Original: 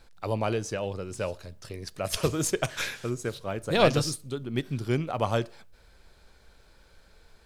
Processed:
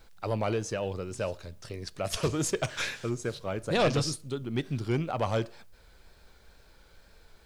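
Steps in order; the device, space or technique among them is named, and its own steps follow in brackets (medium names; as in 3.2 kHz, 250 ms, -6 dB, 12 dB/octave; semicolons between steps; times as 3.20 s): compact cassette (saturation -18.5 dBFS, distortion -13 dB; low-pass 9 kHz 12 dB/octave; wow and flutter; white noise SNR 41 dB)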